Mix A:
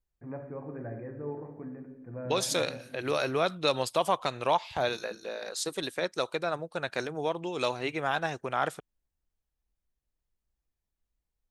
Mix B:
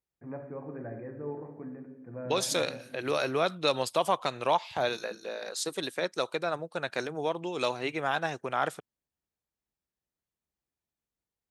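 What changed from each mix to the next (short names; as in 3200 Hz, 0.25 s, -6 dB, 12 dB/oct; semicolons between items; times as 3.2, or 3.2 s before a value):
master: add HPF 120 Hz 12 dB/oct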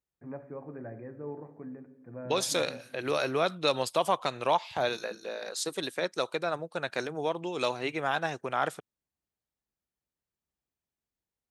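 first voice: send -7.0 dB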